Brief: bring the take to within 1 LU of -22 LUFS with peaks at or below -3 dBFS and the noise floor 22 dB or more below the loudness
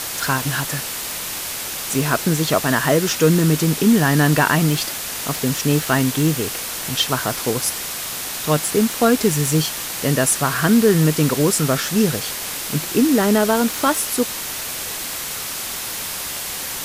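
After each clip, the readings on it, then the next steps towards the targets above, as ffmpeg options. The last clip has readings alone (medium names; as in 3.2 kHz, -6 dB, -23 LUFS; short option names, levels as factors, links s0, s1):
noise floor -28 dBFS; noise floor target -41 dBFS; loudness -19.0 LUFS; peak level -3.0 dBFS; loudness target -22.0 LUFS
-> -af "afftdn=nr=13:nf=-28"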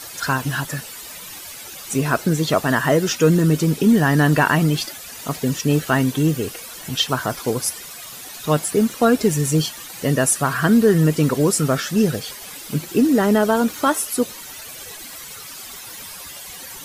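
noise floor -36 dBFS; noise floor target -41 dBFS
-> -af "afftdn=nr=6:nf=-36"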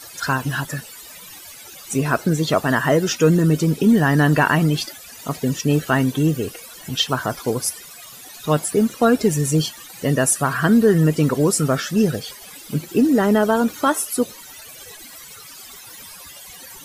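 noise floor -40 dBFS; noise floor target -41 dBFS
-> -af "afftdn=nr=6:nf=-40"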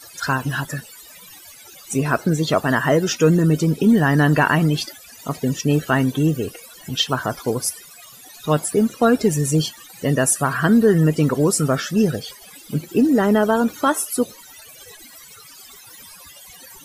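noise floor -44 dBFS; loudness -19.0 LUFS; peak level -4.0 dBFS; loudness target -22.0 LUFS
-> -af "volume=0.708"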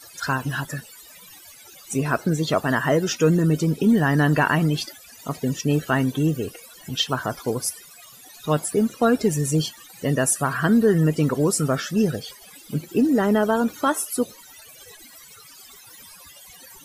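loudness -22.0 LUFS; peak level -7.0 dBFS; noise floor -47 dBFS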